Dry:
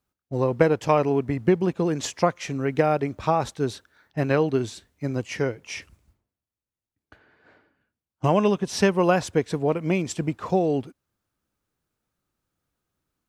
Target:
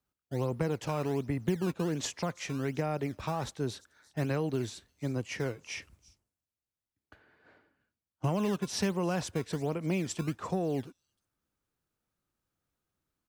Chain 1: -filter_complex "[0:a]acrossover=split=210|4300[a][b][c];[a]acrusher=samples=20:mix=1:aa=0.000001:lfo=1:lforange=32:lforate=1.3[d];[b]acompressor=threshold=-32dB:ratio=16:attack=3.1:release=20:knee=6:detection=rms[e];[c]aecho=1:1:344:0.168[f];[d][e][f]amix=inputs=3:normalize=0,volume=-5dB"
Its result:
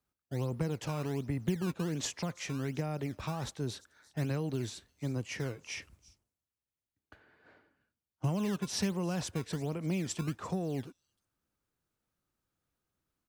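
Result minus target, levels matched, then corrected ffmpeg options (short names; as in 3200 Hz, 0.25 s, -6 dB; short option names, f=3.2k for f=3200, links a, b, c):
compressor: peak gain reduction +6.5 dB
-filter_complex "[0:a]acrossover=split=210|4300[a][b][c];[a]acrusher=samples=20:mix=1:aa=0.000001:lfo=1:lforange=32:lforate=1.3[d];[b]acompressor=threshold=-25dB:ratio=16:attack=3.1:release=20:knee=6:detection=rms[e];[c]aecho=1:1:344:0.168[f];[d][e][f]amix=inputs=3:normalize=0,volume=-5dB"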